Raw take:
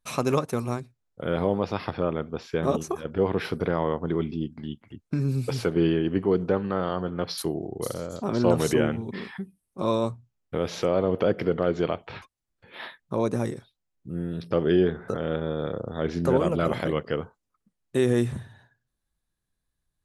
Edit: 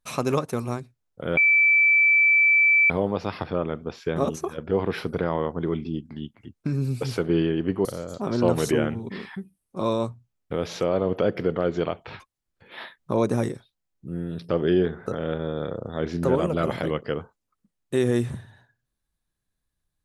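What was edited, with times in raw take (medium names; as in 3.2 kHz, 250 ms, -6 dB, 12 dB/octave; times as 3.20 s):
1.37 s: add tone 2.32 kHz -14.5 dBFS 1.53 s
6.32–7.87 s: delete
13.01–13.56 s: gain +3 dB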